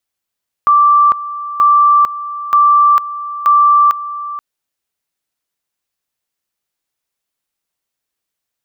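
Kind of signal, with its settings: two-level tone 1170 Hz -5.5 dBFS, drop 15 dB, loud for 0.45 s, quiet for 0.48 s, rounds 4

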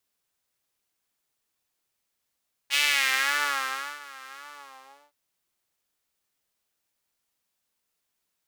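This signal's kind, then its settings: synth patch with vibrato C#4, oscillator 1 saw, interval +7 st, sub -13 dB, filter highpass, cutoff 680 Hz, Q 2.4, filter envelope 2 oct, filter decay 0.79 s, filter sustain 50%, attack 43 ms, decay 1.25 s, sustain -23.5 dB, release 0.76 s, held 1.66 s, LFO 1.8 Hz, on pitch 90 cents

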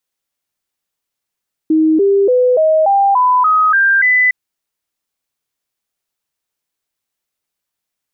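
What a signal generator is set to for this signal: stepped sine 315 Hz up, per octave 3, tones 9, 0.29 s, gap 0.00 s -8 dBFS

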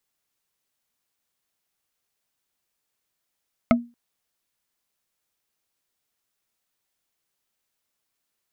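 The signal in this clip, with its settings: wood hit bar, length 0.23 s, lowest mode 238 Hz, modes 4, decay 0.28 s, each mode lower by 1.5 dB, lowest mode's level -11 dB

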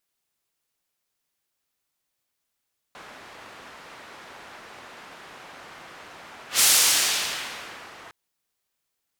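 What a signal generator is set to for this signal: whoosh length 5.16 s, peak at 3.66, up 0.13 s, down 1.44 s, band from 1300 Hz, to 8000 Hz, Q 0.71, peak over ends 28.5 dB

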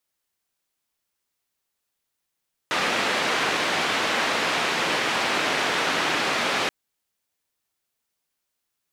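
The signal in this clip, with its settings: noise band 220–2600 Hz, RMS -24 dBFS 3.98 s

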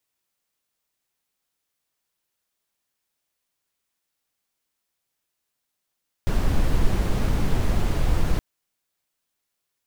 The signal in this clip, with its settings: noise brown, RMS -19 dBFS 2.12 s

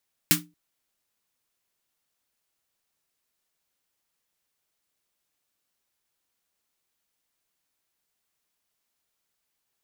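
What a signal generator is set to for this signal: snare drum length 0.23 s, tones 170 Hz, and 300 Hz, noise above 1100 Hz, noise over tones 8.5 dB, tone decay 0.29 s, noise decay 0.16 s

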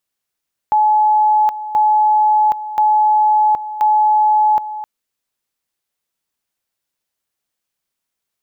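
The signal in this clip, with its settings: two-level tone 853 Hz -9.5 dBFS, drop 13.5 dB, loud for 0.77 s, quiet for 0.26 s, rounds 4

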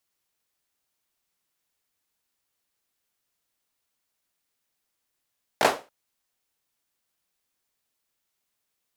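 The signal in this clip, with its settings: hand clap length 0.28 s, bursts 3, apart 18 ms, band 600 Hz, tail 0.29 s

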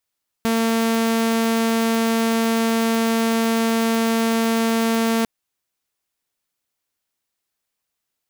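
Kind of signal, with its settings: tone saw 227 Hz -14.5 dBFS 4.80 s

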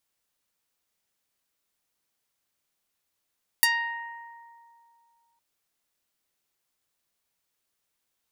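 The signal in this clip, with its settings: plucked string A#5, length 1.76 s, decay 2.52 s, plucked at 0.23, medium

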